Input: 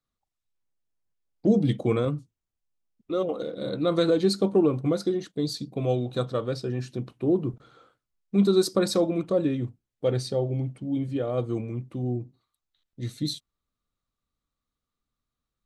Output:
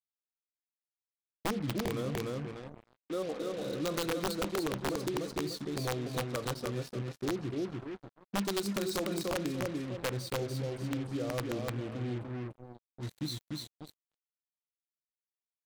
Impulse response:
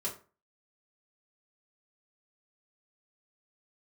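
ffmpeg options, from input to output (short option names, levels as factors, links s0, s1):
-af "aecho=1:1:295|590|885|1180:0.631|0.215|0.0729|0.0248,acompressor=threshold=0.0708:ratio=6,acrusher=bits=5:mix=0:aa=0.5,aeval=exprs='(mod(7.94*val(0)+1,2)-1)/7.94':c=same,volume=0.447"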